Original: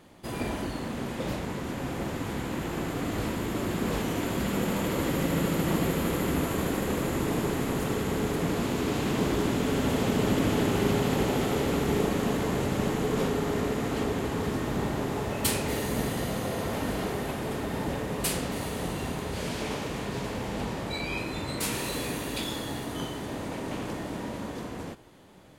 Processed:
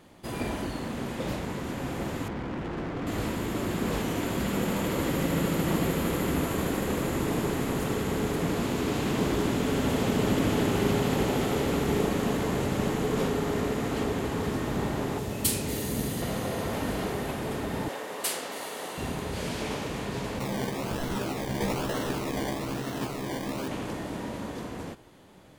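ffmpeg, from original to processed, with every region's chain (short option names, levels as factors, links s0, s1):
-filter_complex "[0:a]asettb=1/sr,asplit=3[s0][s1][s2];[s0]atrim=end=2.284[s3];[s1]atrim=start=2.28:end=3.07,asetpts=PTS-STARTPTS,afade=t=in:d=0.004:c=qsin,afade=t=out:st=0.786:d=0.004:c=qsin,lowpass=8400,adynamicsmooth=sensitivity=5.5:basefreq=1500,volume=28.2,asoftclip=hard,volume=0.0355[s4];[s2]atrim=start=3.066[s5];[s3][s4]acrossfade=d=0.004:c1=hsin:c2=qsin[s6];[s6][s5]acrossfade=d=0.004:c1=qsin:c2=hsin,asettb=1/sr,asplit=3[s7][s8][s9];[s7]atrim=end=15.184[s10];[s8]atrim=start=15.18:end=16.22,asetpts=PTS-STARTPTS,afade=t=in:d=0.004:c=qsin,afade=t=out:st=1.036:d=0.004:c=qsin,highpass=44,acrossover=split=430|3000[s11][s12][s13];[s12]acompressor=threshold=0.00891:ratio=3:attack=3.2:release=140:knee=2.83:detection=peak[s14];[s11][s14][s13]amix=inputs=3:normalize=0,highshelf=f=10000:g=5[s15];[s9]atrim=start=16.216[s16];[s10][s15]acrossfade=d=0.004:c1=hsin:c2=qsin[s17];[s17][s16]acrossfade=d=0.004:c1=qsin:c2=hsin,asettb=1/sr,asplit=3[s18][s19][s20];[s18]atrim=end=17.884[s21];[s19]atrim=start=17.88:end=18.98,asetpts=PTS-STARTPTS,afade=t=in:d=0.004:c=qsin,afade=t=out:st=1.096:d=0.004:c=qsin,highpass=480,bandreject=f=2500:w=27[s22];[s20]atrim=start=18.976[s23];[s21][s22]acrossfade=d=0.004:c1=hsin:c2=qsin[s24];[s24][s23]acrossfade=d=0.004:c1=qsin:c2=hsin,asettb=1/sr,asplit=3[s25][s26][s27];[s25]atrim=end=20.394[s28];[s26]atrim=start=20.39:end=23.68,asetpts=PTS-STARTPTS,afade=t=in:d=0.004:c=qsin,afade=t=out:st=3.286:d=0.004:c=qsin,highpass=f=100:w=0.5412,highpass=f=100:w=1.3066,acrusher=samples=26:mix=1:aa=0.000001:lfo=1:lforange=15.6:lforate=1.1,asplit=2[s29][s30];[s30]adelay=15,volume=0.708[s31];[s29][s31]amix=inputs=2:normalize=0,atrim=end_sample=145089[s32];[s27]atrim=start=23.676[s33];[s28][s32]acrossfade=d=0.004:c1=hsin:c2=qsin[s34];[s34][s33]acrossfade=d=0.004:c1=qsin:c2=hsin"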